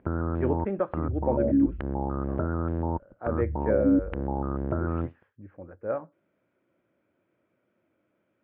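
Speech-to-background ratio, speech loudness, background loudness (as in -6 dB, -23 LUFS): -3.5 dB, -32.5 LUFS, -29.0 LUFS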